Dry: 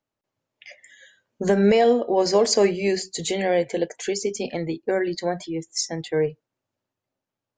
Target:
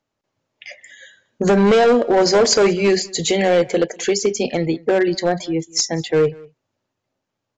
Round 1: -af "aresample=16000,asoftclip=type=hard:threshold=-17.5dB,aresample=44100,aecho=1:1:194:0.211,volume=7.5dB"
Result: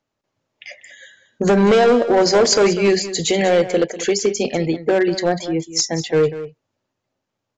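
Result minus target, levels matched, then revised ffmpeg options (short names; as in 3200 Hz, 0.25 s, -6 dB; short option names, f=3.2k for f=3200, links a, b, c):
echo-to-direct +10.5 dB
-af "aresample=16000,asoftclip=type=hard:threshold=-17.5dB,aresample=44100,aecho=1:1:194:0.0631,volume=7.5dB"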